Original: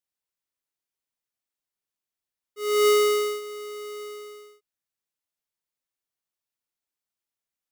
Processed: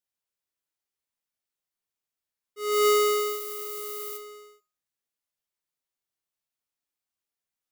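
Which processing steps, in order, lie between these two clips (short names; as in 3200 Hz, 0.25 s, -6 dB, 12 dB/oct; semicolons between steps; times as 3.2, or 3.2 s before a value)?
2.71–4.16 added noise violet -38 dBFS; resonator 78 Hz, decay 0.36 s, harmonics all, mix 70%; gain +5.5 dB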